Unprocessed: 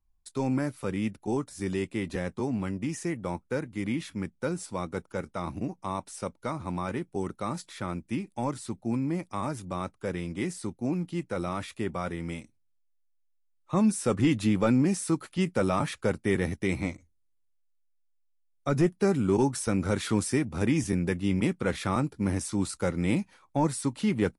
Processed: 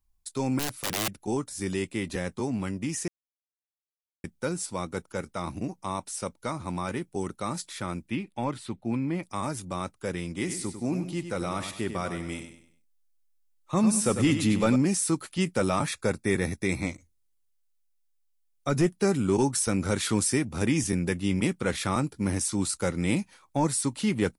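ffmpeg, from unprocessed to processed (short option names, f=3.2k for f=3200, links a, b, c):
-filter_complex "[0:a]asettb=1/sr,asplit=3[a][b][c];[a]atrim=end=0.594[d];[b]atrim=start=0.59:end=1.09,asetpts=PTS-STARTPTS,afade=t=in:d=0.004:c=qsin,afade=t=out:st=0.496:d=0.004:c=qsin,aeval=exprs='(mod(20*val(0)+1,2)-1)/20':c=same[e];[c]atrim=start=1.086[f];[d][e]acrossfade=d=0.004:c1=hsin:c2=qsin[g];[g][f]acrossfade=d=0.004:c1=qsin:c2=hsin,asettb=1/sr,asplit=3[h][i][j];[h]atrim=end=8.084[k];[i]atrim=start=8.08:end=9.23,asetpts=PTS-STARTPTS,afade=t=in:d=0.004:c=qsin,afade=t=out:st=1.146:d=0.004:c=qsin,highshelf=f=4.5k:t=q:w=1.5:g=-10[l];[j]atrim=start=9.226[m];[k][l]acrossfade=d=0.004:c1=hsin:c2=qsin[n];[n][m]acrossfade=d=0.004:c1=qsin:c2=hsin,asettb=1/sr,asplit=3[o][p][q];[o]atrim=end=10.364[r];[p]atrim=start=10.36:end=14.76,asetpts=PTS-STARTPTS,afade=t=in:d=0.004:c=qsin,afade=t=out:st=4.396:d=0.004:c=qsin,aecho=1:1:98|196|294|392:0.355|0.128|0.046|0.0166,atrim=end_sample=194040[s];[q]atrim=start=14.756[t];[r][s]acrossfade=d=0.004:c1=hsin:c2=qsin[u];[u][t]acrossfade=d=0.004:c1=qsin:c2=hsin,asettb=1/sr,asplit=3[v][w][x];[v]atrim=end=15.874[y];[w]atrim=start=15.87:end=16.87,asetpts=PTS-STARTPTS,afade=t=in:d=0.004:c=qsin,afade=t=out:st=0.996:d=0.004:c=qsin,asuperstop=centerf=3000:order=12:qfactor=6.7[z];[x]atrim=start=16.866[aa];[y][z]acrossfade=d=0.004:c1=hsin:c2=qsin[ab];[ab][aa]acrossfade=d=0.004:c1=qsin:c2=hsin,asplit=3[ac][ad][ae];[ac]atrim=end=3.08,asetpts=PTS-STARTPTS,afade=t=out:st=3.076:d=0.004:c=hsin[af];[ad]atrim=start=3.08:end=4.24,asetpts=PTS-STARTPTS,volume=0[ag];[ae]atrim=start=4.24,asetpts=PTS-STARTPTS,afade=t=in:d=0.004:c=hsin[ah];[af][ag][ah]concat=n=3:v=0:a=1,highshelf=f=3.4k:g=8.5"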